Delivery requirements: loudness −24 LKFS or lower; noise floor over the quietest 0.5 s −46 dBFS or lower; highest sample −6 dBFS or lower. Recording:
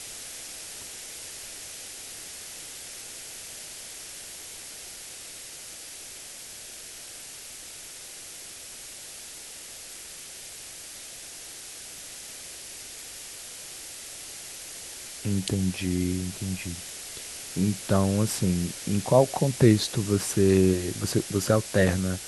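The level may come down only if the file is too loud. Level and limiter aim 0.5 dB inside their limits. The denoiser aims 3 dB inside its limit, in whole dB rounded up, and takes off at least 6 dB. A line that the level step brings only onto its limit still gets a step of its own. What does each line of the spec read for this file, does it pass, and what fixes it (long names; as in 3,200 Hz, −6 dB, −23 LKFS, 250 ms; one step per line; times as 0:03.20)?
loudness −30.0 LKFS: in spec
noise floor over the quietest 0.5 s −43 dBFS: out of spec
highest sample −5.5 dBFS: out of spec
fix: broadband denoise 6 dB, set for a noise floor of −43 dBFS
brickwall limiter −6.5 dBFS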